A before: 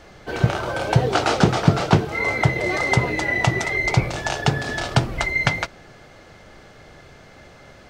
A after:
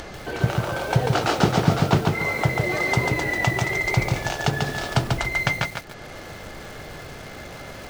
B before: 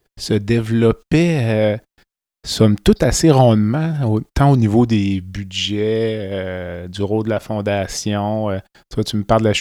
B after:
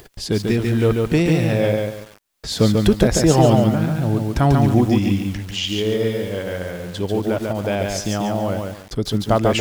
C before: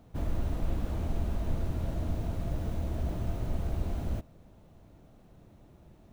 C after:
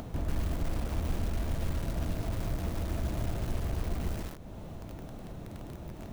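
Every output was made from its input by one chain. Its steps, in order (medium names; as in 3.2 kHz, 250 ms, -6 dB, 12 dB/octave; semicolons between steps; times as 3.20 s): upward compressor, threshold -23 dBFS; bit-crushed delay 142 ms, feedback 35%, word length 6-bit, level -3 dB; trim -3.5 dB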